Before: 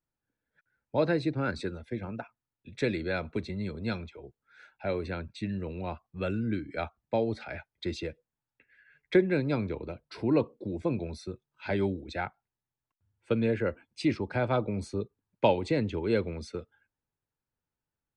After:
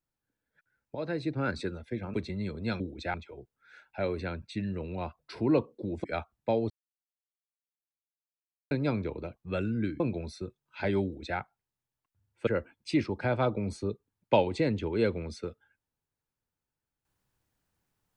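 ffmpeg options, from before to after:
ffmpeg -i in.wav -filter_complex "[0:a]asplit=12[link_01][link_02][link_03][link_04][link_05][link_06][link_07][link_08][link_09][link_10][link_11][link_12];[link_01]atrim=end=0.95,asetpts=PTS-STARTPTS,afade=type=out:start_time=0.946:duration=0.004:curve=hsin:silence=0.237137[link_13];[link_02]atrim=start=0.95:end=2.142,asetpts=PTS-STARTPTS,afade=type=in:duration=0.5:silence=0.237137[link_14];[link_03]atrim=start=3.338:end=4.002[link_15];[link_04]atrim=start=11.898:end=12.242[link_16];[link_05]atrim=start=3.998:end=6.052[link_17];[link_06]atrim=start=10.008:end=10.862[link_18];[link_07]atrim=start=6.688:end=7.35,asetpts=PTS-STARTPTS,afade=type=out:start_time=0.658:duration=0.004:curve=hsin[link_19];[link_08]atrim=start=7.35:end=9.36,asetpts=PTS-STARTPTS,volume=0[link_20];[link_09]atrim=start=9.36:end=10.012,asetpts=PTS-STARTPTS,afade=type=in:duration=0.004:curve=hsin[link_21];[link_10]atrim=start=6.048:end=6.692[link_22];[link_11]atrim=start=10.858:end=13.332[link_23];[link_12]atrim=start=13.578[link_24];[link_13][link_14]concat=n=2:v=0:a=1[link_25];[link_25][link_15]acrossfade=duration=0.004:curve1=hsin:curve2=hsin[link_26];[link_26][link_16]acrossfade=duration=0.004:curve1=hsin:curve2=hsin[link_27];[link_27][link_17]acrossfade=duration=0.004:curve1=hsin:curve2=hsin[link_28];[link_28][link_18]acrossfade=duration=0.004:curve1=hsin:curve2=hsin[link_29];[link_19][link_20][link_21]concat=n=3:v=0:a=1[link_30];[link_29][link_30]acrossfade=duration=0.004:curve1=hsin:curve2=hsin[link_31];[link_31][link_22]acrossfade=duration=0.004:curve1=hsin:curve2=hsin[link_32];[link_32][link_23]acrossfade=duration=0.004:curve1=hsin:curve2=hsin[link_33];[link_33][link_24]acrossfade=duration=0.004:curve1=hsin:curve2=hsin" out.wav

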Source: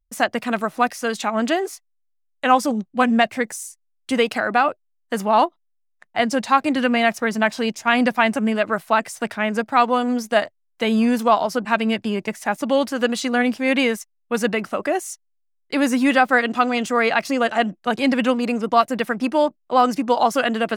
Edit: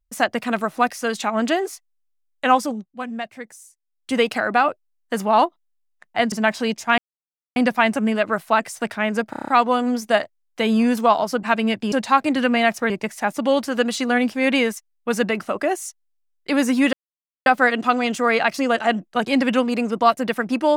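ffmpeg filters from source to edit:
ffmpeg -i in.wav -filter_complex "[0:a]asplit=14[link_01][link_02][link_03][link_04][link_05][link_06][link_07][link_08][link_09][link_10][link_11][link_12][link_13][link_14];[link_01]atrim=end=2.91,asetpts=PTS-STARTPTS,afade=type=out:start_time=2.49:duration=0.42:silence=0.237137[link_15];[link_02]atrim=start=2.91:end=3.78,asetpts=PTS-STARTPTS,volume=-12.5dB[link_16];[link_03]atrim=start=3.78:end=6.322,asetpts=PTS-STARTPTS,afade=type=in:duration=0.42:silence=0.237137[link_17];[link_04]atrim=start=7.298:end=7.96,asetpts=PTS-STARTPTS,afade=type=out:start_time=0.658:duration=0.004:curve=hsin,apad=pad_dur=0.58[link_18];[link_05]atrim=start=7.96:end=9.732,asetpts=PTS-STARTPTS,afade=type=in:duration=0.004:curve=hsin[link_19];[link_06]atrim=start=9.698:end=9.732[link_20];[link_07]atrim=start=9.698:end=9.732[link_21];[link_08]atrim=start=9.698:end=9.732[link_22];[link_09]atrim=start=9.698:end=9.732[link_23];[link_10]atrim=start=9.698:end=9.732[link_24];[link_11]atrim=start=9.698:end=12.142[link_25];[link_12]atrim=start=6.318:end=7.302[link_26];[link_13]atrim=start=12.138:end=16.17,asetpts=PTS-STARTPTS,afade=type=out:start_time=4.028:duration=0.004:curve=hsin,apad=pad_dur=0.53[link_27];[link_14]atrim=start=16.17,asetpts=PTS-STARTPTS,afade=type=in:duration=0.004:curve=hsin[link_28];[link_15][link_16][link_17]concat=n=3:v=0:a=1[link_29];[link_18][link_19]concat=n=2:v=0:a=1[link_30];[link_29][link_30]acrossfade=duration=0.004:curve1=hsin:curve2=hsin[link_31];[link_31][link_20]acrossfade=duration=0.004:curve1=hsin:curve2=hsin[link_32];[link_32][link_21]acrossfade=duration=0.004:curve1=hsin:curve2=hsin[link_33];[link_33][link_22]acrossfade=duration=0.004:curve1=hsin:curve2=hsin[link_34];[link_34][link_23]acrossfade=duration=0.004:curve1=hsin:curve2=hsin[link_35];[link_35][link_24]acrossfade=duration=0.004:curve1=hsin:curve2=hsin[link_36];[link_36][link_25]acrossfade=duration=0.004:curve1=hsin:curve2=hsin[link_37];[link_37][link_26]acrossfade=duration=0.004:curve1=hsin:curve2=hsin[link_38];[link_27][link_28]concat=n=2:v=0:a=1[link_39];[link_38][link_39]acrossfade=duration=0.004:curve1=hsin:curve2=hsin" out.wav

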